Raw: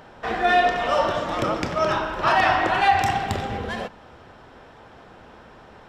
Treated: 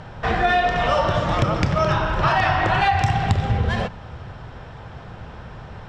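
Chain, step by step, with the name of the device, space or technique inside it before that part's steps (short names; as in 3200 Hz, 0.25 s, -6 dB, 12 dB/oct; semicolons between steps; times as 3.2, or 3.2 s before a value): jukebox (LPF 7300 Hz 12 dB/oct; resonant low shelf 190 Hz +10 dB, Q 1.5; compressor 5:1, threshold -21 dBFS, peak gain reduction 8.5 dB); gain +5.5 dB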